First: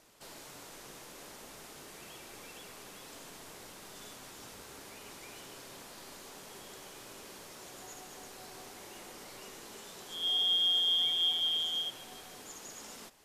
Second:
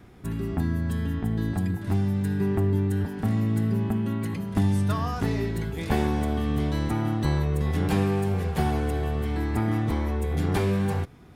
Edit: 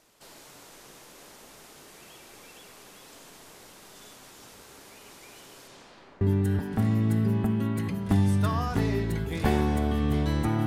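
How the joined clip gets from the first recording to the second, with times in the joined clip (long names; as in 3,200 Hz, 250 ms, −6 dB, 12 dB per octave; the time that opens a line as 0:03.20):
first
0:05.67–0:06.21: low-pass filter 10,000 Hz → 1,500 Hz
0:06.21: continue with second from 0:02.67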